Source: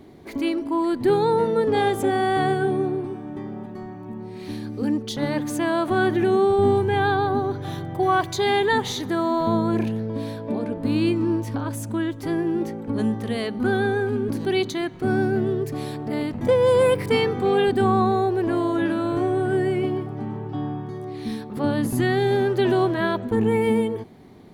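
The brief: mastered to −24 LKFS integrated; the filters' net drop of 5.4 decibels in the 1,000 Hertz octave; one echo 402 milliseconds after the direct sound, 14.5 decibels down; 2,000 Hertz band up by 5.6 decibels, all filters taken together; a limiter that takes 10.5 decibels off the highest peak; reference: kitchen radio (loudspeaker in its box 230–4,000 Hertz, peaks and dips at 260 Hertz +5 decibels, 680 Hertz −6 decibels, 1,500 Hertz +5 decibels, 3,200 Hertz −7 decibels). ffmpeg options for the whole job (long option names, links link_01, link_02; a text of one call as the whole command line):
ffmpeg -i in.wav -af "equalizer=frequency=1000:width_type=o:gain=-6.5,equalizer=frequency=2000:width_type=o:gain=6.5,alimiter=limit=-20dB:level=0:latency=1,highpass=230,equalizer=frequency=260:width_type=q:width=4:gain=5,equalizer=frequency=680:width_type=q:width=4:gain=-6,equalizer=frequency=1500:width_type=q:width=4:gain=5,equalizer=frequency=3200:width_type=q:width=4:gain=-7,lowpass=frequency=4000:width=0.5412,lowpass=frequency=4000:width=1.3066,aecho=1:1:402:0.188,volume=4.5dB" out.wav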